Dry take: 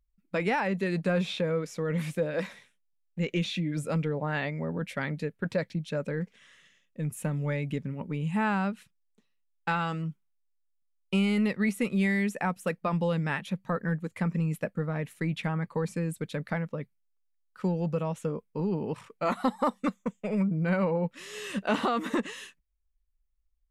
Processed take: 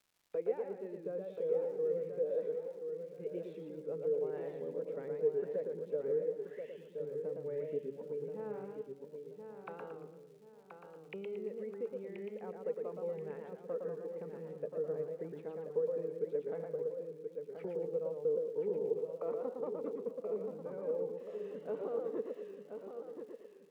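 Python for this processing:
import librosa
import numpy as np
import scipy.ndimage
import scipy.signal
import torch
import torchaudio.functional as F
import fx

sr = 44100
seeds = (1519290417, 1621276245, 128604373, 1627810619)

p1 = fx.rider(x, sr, range_db=10, speed_s=0.5)
p2 = fx.auto_wah(p1, sr, base_hz=450.0, top_hz=3800.0, q=9.6, full_db=-33.0, direction='down')
p3 = fx.dmg_crackle(p2, sr, seeds[0], per_s=190.0, level_db=-62.0)
p4 = p3 + fx.echo_feedback(p3, sr, ms=1029, feedback_pct=34, wet_db=-7, dry=0)
p5 = fx.echo_warbled(p4, sr, ms=115, feedback_pct=39, rate_hz=2.8, cents=135, wet_db=-4.5)
y = F.gain(torch.from_numpy(p5), 1.5).numpy()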